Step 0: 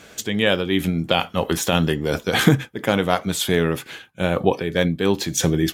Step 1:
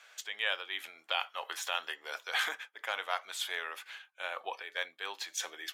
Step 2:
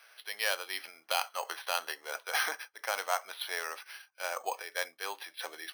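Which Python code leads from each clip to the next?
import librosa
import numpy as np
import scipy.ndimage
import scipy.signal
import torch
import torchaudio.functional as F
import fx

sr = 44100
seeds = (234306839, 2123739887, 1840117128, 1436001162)

y1 = scipy.signal.sosfilt(scipy.signal.bessel(4, 1200.0, 'highpass', norm='mag', fs=sr, output='sos'), x)
y1 = fx.high_shelf(y1, sr, hz=4600.0, db=-11.5)
y1 = F.gain(torch.from_numpy(y1), -6.5).numpy()
y2 = fx.dynamic_eq(y1, sr, hz=640.0, q=0.73, threshold_db=-49.0, ratio=4.0, max_db=5)
y2 = np.repeat(scipy.signal.resample_poly(y2, 1, 6), 6)[:len(y2)]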